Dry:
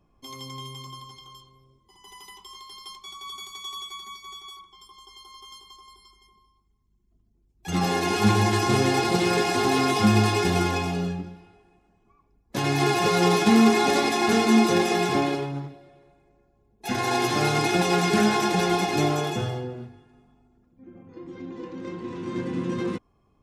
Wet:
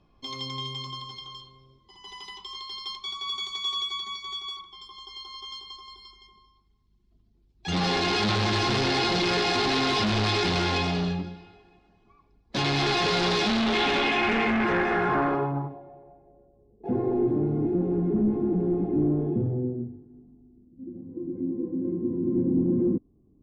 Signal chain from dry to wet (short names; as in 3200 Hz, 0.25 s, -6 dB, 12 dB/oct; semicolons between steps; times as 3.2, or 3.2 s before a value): overloaded stage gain 25.5 dB; low-pass sweep 4200 Hz -> 300 Hz, 13.5–17.48; gain +2 dB